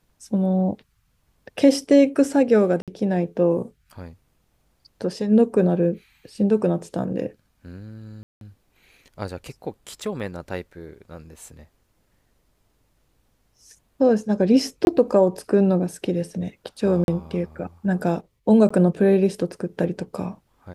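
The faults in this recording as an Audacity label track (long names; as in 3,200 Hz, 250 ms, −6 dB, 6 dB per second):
2.820000	2.880000	drop-out 57 ms
8.230000	8.410000	drop-out 182 ms
14.850000	14.870000	drop-out 21 ms
17.040000	17.080000	drop-out 41 ms
18.690000	18.700000	drop-out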